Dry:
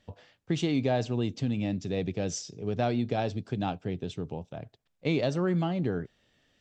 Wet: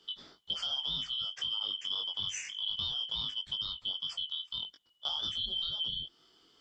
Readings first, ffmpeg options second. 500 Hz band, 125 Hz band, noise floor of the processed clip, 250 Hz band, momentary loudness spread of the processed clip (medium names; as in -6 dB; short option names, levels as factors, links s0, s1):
-28.0 dB, -24.0 dB, -68 dBFS, -29.0 dB, 7 LU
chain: -filter_complex "[0:a]afftfilt=real='real(if(lt(b,272),68*(eq(floor(b/68),0)*1+eq(floor(b/68),1)*3+eq(floor(b/68),2)*0+eq(floor(b/68),3)*2)+mod(b,68),b),0)':imag='imag(if(lt(b,272),68*(eq(floor(b/68),0)*1+eq(floor(b/68),1)*3+eq(floor(b/68),2)*0+eq(floor(b/68),3)*2)+mod(b,68),b),0)':win_size=2048:overlap=0.75,acrossover=split=150[s0][s1];[s0]alimiter=level_in=17.8:limit=0.0631:level=0:latency=1:release=62,volume=0.0562[s2];[s1]acompressor=threshold=0.0141:ratio=6[s3];[s2][s3]amix=inputs=2:normalize=0,flanger=delay=19:depth=2.4:speed=1.9,volume=2.24"